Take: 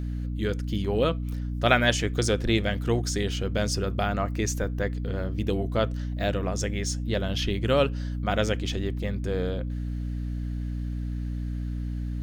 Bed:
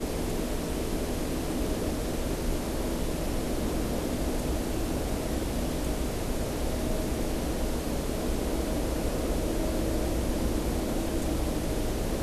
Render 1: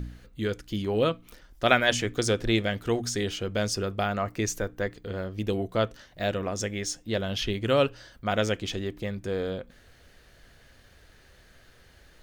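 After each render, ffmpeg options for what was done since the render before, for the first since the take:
-af "bandreject=f=60:t=h:w=4,bandreject=f=120:t=h:w=4,bandreject=f=180:t=h:w=4,bandreject=f=240:t=h:w=4,bandreject=f=300:t=h:w=4"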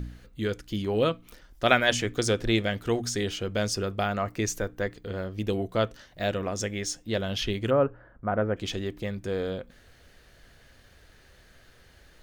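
-filter_complex "[0:a]asplit=3[s0][s1][s2];[s0]afade=t=out:st=7.69:d=0.02[s3];[s1]lowpass=f=1500:w=0.5412,lowpass=f=1500:w=1.3066,afade=t=in:st=7.69:d=0.02,afade=t=out:st=8.56:d=0.02[s4];[s2]afade=t=in:st=8.56:d=0.02[s5];[s3][s4][s5]amix=inputs=3:normalize=0"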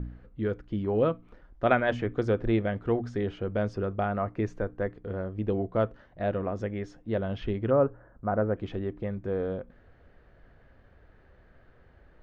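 -af "lowpass=1300"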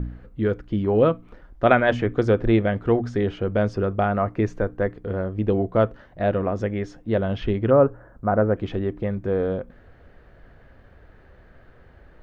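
-af "volume=2.24,alimiter=limit=0.708:level=0:latency=1"

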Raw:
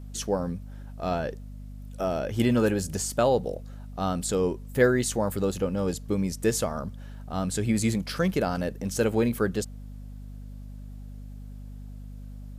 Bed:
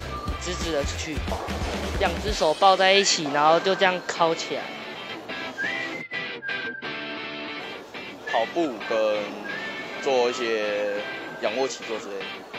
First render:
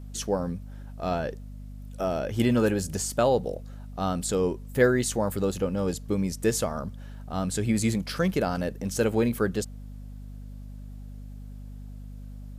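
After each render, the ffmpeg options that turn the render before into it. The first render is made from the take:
-af anull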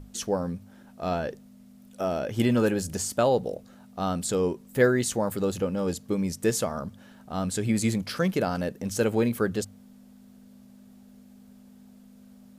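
-af "bandreject=f=50:t=h:w=6,bandreject=f=100:t=h:w=6,bandreject=f=150:t=h:w=6"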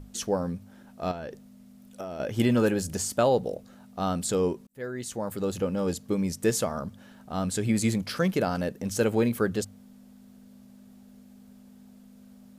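-filter_complex "[0:a]asettb=1/sr,asplit=3[s0][s1][s2];[s0]atrim=end=1.114[s3];[s1]atrim=start=1.11:end=2.2,asetpts=PTS-STARTPTS,afade=t=in:d=0.004:c=qsin,afade=t=out:st=1.086:d=0.004:c=qsin,acompressor=threshold=0.0224:ratio=6:attack=3.2:release=140:knee=1:detection=peak[s4];[s2]atrim=start=2.196[s5];[s3][s4]acrossfade=d=0.004:c1=hsin:c2=qsin[s6];[s6][s5]acrossfade=d=0.004:c1=qsin:c2=hsin,asplit=2[s7][s8];[s7]atrim=end=4.67,asetpts=PTS-STARTPTS,afade=t=out:st=4.666:d=0.004:c=hsin[s9];[s8]atrim=start=4.67,asetpts=PTS-STARTPTS,afade=t=in:d=1.03[s10];[s9][s10]concat=n=2:v=0:a=1"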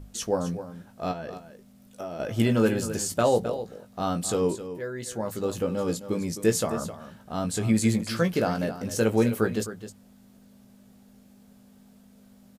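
-filter_complex "[0:a]asplit=2[s0][s1];[s1]adelay=18,volume=0.447[s2];[s0][s2]amix=inputs=2:normalize=0,aecho=1:1:261:0.251"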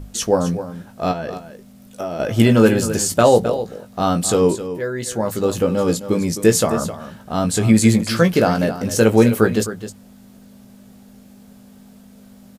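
-af "volume=2.99,alimiter=limit=0.891:level=0:latency=1"

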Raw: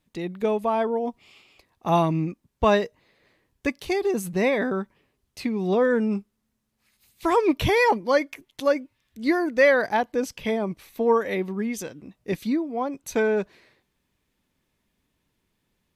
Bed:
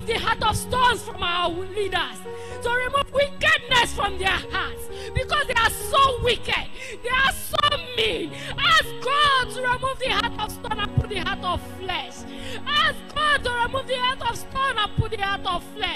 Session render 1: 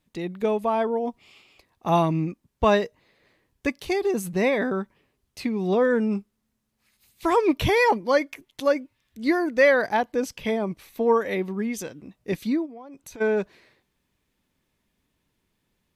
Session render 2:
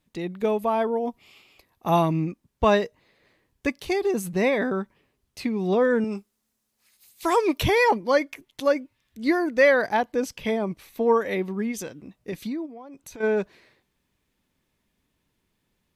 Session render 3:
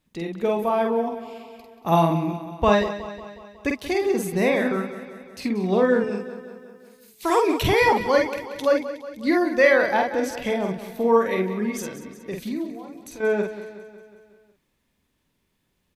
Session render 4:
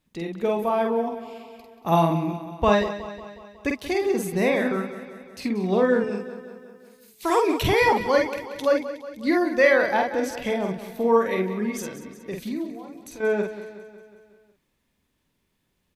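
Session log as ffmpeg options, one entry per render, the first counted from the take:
-filter_complex "[0:a]asplit=3[s0][s1][s2];[s0]afade=t=out:st=12.65:d=0.02[s3];[s1]acompressor=threshold=0.0112:ratio=8:attack=3.2:release=140:knee=1:detection=peak,afade=t=in:st=12.65:d=0.02,afade=t=out:st=13.2:d=0.02[s4];[s2]afade=t=in:st=13.2:d=0.02[s5];[s3][s4][s5]amix=inputs=3:normalize=0"
-filter_complex "[0:a]asettb=1/sr,asplit=3[s0][s1][s2];[s0]atrim=end=0.434[s3];[s1]atrim=start=0.43:end=2.25,asetpts=PTS-STARTPTS,afade=t=in:d=0.004:c=qsin,afade=t=out:st=1.816:d=0.004:c=qsin,equalizer=f=12000:t=o:w=0.21:g=11[s4];[s2]atrim=start=2.246[s5];[s3][s4]acrossfade=d=0.004:c1=hsin:c2=qsin[s6];[s6][s5]acrossfade=d=0.004:c1=qsin:c2=hsin,asettb=1/sr,asplit=3[s7][s8][s9];[s7]atrim=end=6.044[s10];[s8]atrim=start=6.04:end=7.63,asetpts=PTS-STARTPTS,afade=t=in:d=0.004:c=qsin,afade=t=out:st=1.586:d=0.004:c=qsin,bass=f=250:g=-9,treble=f=4000:g=7[s11];[s9]atrim=start=7.626[s12];[s10][s11]acrossfade=d=0.004:c1=hsin:c2=qsin[s13];[s13][s12]acrossfade=d=0.004:c1=qsin:c2=hsin,asplit=3[s14][s15][s16];[s14]afade=t=out:st=11.71:d=0.02[s17];[s15]acompressor=threshold=0.0447:ratio=6:attack=3.2:release=140:knee=1:detection=peak,afade=t=in:st=11.71:d=0.02,afade=t=out:st=13.22:d=0.02[s18];[s16]afade=t=in:st=13.22:d=0.02[s19];[s17][s18][s19]amix=inputs=3:normalize=0"
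-filter_complex "[0:a]asplit=2[s0][s1];[s1]adelay=48,volume=0.668[s2];[s0][s2]amix=inputs=2:normalize=0,aecho=1:1:183|366|549|732|915|1098:0.224|0.13|0.0753|0.0437|0.0253|0.0147"
-af "volume=0.891"

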